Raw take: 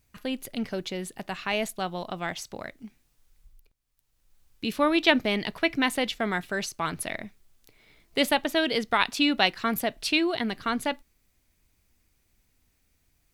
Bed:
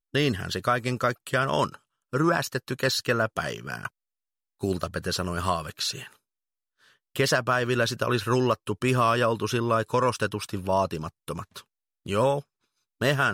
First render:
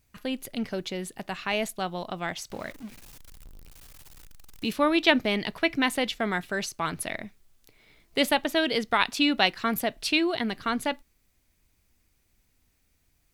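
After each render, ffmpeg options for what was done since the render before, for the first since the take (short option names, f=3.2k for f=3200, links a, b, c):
-filter_complex "[0:a]asettb=1/sr,asplit=3[a][b][c];[a]atrim=end=2.504[d];[b]atrim=start=2.5:end=4.73,asetpts=PTS-STARTPTS,afade=t=in:d=0.004:c=qsin,afade=t=out:st=2.226:d=0.004:c=qsin,aeval=exprs='val(0)+0.5*0.0075*sgn(val(0))':c=same[e];[c]atrim=start=4.726[f];[d][e]acrossfade=d=0.004:c1=hsin:c2=qsin[g];[g][f]acrossfade=d=0.004:c1=qsin:c2=hsin"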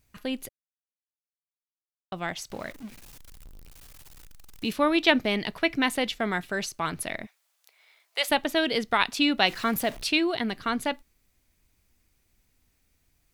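-filter_complex "[0:a]asplit=3[a][b][c];[a]afade=t=out:st=7.25:d=0.02[d];[b]highpass=f=660:w=0.5412,highpass=f=660:w=1.3066,afade=t=in:st=7.25:d=0.02,afade=t=out:st=8.28:d=0.02[e];[c]afade=t=in:st=8.28:d=0.02[f];[d][e][f]amix=inputs=3:normalize=0,asettb=1/sr,asplit=3[g][h][i];[g]atrim=end=9.484[j];[h]atrim=start=9.48:end=10.04,asetpts=PTS-STARTPTS,afade=t=in:d=0.004:c=qsin,afade=t=out:st=0.556:d=0.004:c=qsin,aeval=exprs='val(0)+0.5*0.0119*sgn(val(0))':c=same[k];[i]atrim=start=10.036[l];[j][k]acrossfade=d=0.004:c1=hsin:c2=qsin[m];[m][l]acrossfade=d=0.004:c1=qsin:c2=hsin,asplit=3[n][o][p];[n]atrim=end=0.49,asetpts=PTS-STARTPTS,afade=t=out:st=0.486:d=0.004:c=hsin[q];[o]atrim=start=0.49:end=2.12,asetpts=PTS-STARTPTS,volume=0[r];[p]atrim=start=2.12,asetpts=PTS-STARTPTS,afade=t=in:d=0.004:c=hsin[s];[q][r][s]concat=n=3:v=0:a=1"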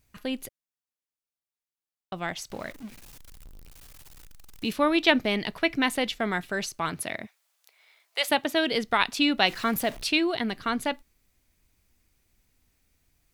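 -filter_complex "[0:a]asettb=1/sr,asplit=3[a][b][c];[a]atrim=end=6.894[d];[b]atrim=start=6.89:end=8.72,asetpts=PTS-STARTPTS,afade=t=in:d=0.004:c=qsin,afade=t=out:st=1.826:d=0.004:c=qsin,highpass=84[e];[c]atrim=start=8.716[f];[d][e]acrossfade=d=0.004:c1=hsin:c2=qsin[g];[g][f]acrossfade=d=0.004:c1=qsin:c2=hsin"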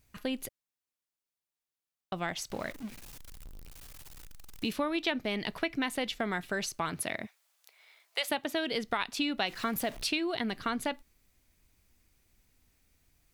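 -af "acompressor=threshold=-29dB:ratio=4"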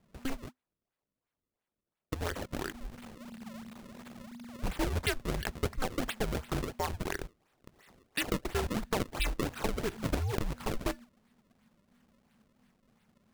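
-af "afreqshift=-250,acrusher=samples=32:mix=1:aa=0.000001:lfo=1:lforange=51.2:lforate=2.9"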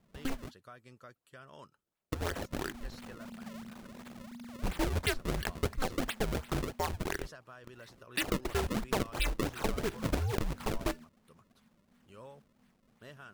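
-filter_complex "[1:a]volume=-28dB[a];[0:a][a]amix=inputs=2:normalize=0"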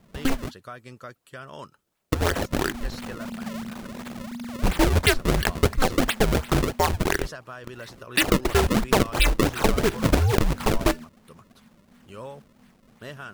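-af "volume=12dB"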